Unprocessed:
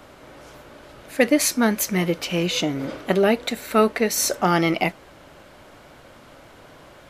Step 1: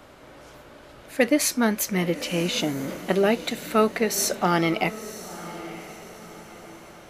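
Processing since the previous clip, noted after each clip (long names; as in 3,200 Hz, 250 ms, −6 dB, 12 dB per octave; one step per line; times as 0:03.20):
feedback delay with all-pass diffusion 978 ms, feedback 43%, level −14.5 dB
level −2.5 dB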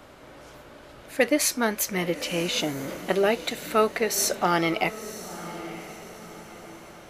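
dynamic equaliser 210 Hz, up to −7 dB, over −38 dBFS, Q 1.5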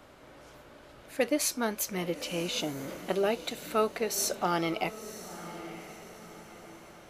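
dynamic equaliser 1,900 Hz, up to −6 dB, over −45 dBFS, Q 3.1
level −5.5 dB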